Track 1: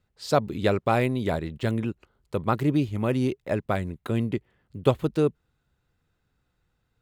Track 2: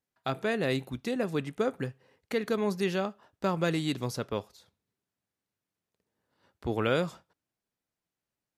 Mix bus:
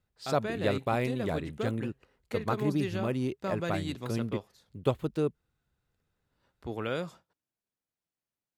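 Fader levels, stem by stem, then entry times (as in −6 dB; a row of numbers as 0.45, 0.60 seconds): −6.5, −6.0 decibels; 0.00, 0.00 seconds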